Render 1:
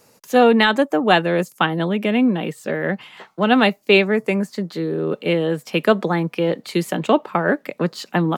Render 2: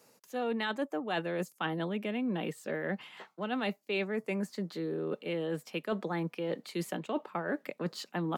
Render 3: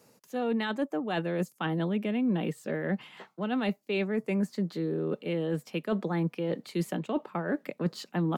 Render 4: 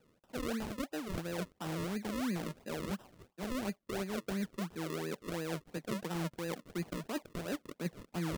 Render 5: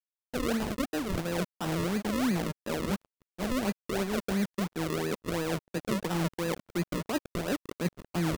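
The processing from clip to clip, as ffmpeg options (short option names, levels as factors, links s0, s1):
-af "highpass=150,areverse,acompressor=threshold=0.0794:ratio=6,areverse,volume=0.376"
-af "lowshelf=f=280:g=10"
-af "acrusher=samples=39:mix=1:aa=0.000001:lfo=1:lforange=39:lforate=2.9,volume=0.398"
-filter_complex "[0:a]asplit=2[s0][s1];[s1]adelay=563,lowpass=f=1600:p=1,volume=0.0841,asplit=2[s2][s3];[s3]adelay=563,lowpass=f=1600:p=1,volume=0.18[s4];[s0][s2][s4]amix=inputs=3:normalize=0,acrusher=bits=6:mix=0:aa=0.5,volume=2.24"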